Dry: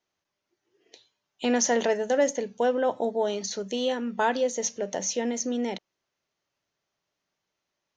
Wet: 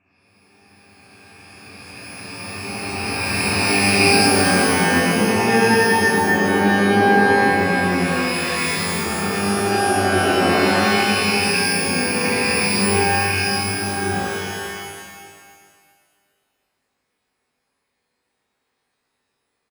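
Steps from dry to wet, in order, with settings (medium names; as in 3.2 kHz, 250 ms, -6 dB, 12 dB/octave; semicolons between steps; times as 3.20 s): reverse spectral sustain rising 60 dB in 2.06 s; bass shelf 170 Hz -5 dB; feedback delay 162 ms, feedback 28%, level -12 dB; wide varispeed 0.404×; pitch-shifted reverb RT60 1.6 s, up +12 st, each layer -2 dB, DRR -7 dB; trim -6 dB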